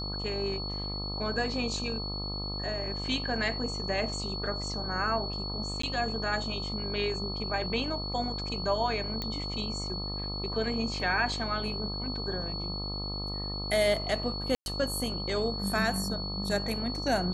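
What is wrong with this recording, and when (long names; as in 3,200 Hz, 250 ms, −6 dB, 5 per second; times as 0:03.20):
mains buzz 50 Hz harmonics 26 −37 dBFS
whistle 4,400 Hz −36 dBFS
0:05.82–0:05.83: drop-out 14 ms
0:09.22: click −19 dBFS
0:14.55–0:14.66: drop-out 111 ms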